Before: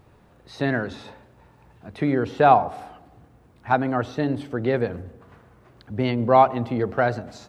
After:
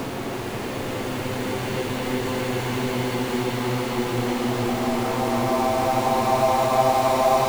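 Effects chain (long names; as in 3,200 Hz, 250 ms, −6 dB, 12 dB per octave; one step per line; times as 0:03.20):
spectrum averaged block by block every 200 ms
centre clipping without the shift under −21.5 dBFS
echo that builds up and dies away 159 ms, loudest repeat 5, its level −13.5 dB
extreme stretch with random phases 13×, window 0.50 s, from 0:05.81
multiband upward and downward compressor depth 40%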